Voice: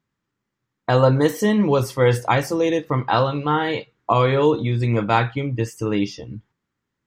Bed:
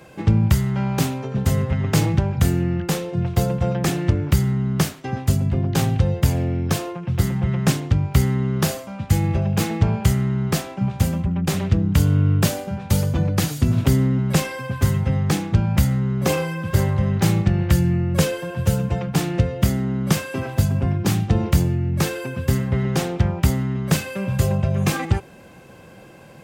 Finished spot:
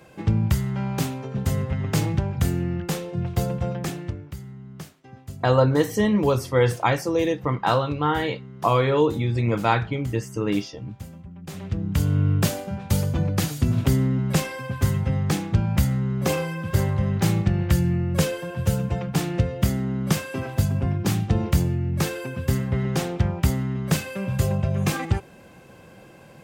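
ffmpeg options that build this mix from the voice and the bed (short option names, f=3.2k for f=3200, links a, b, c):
-filter_complex "[0:a]adelay=4550,volume=-2.5dB[a];[1:a]volume=11.5dB,afade=t=out:st=3.57:d=0.73:silence=0.188365,afade=t=in:st=11.41:d=0.81:silence=0.158489[b];[a][b]amix=inputs=2:normalize=0"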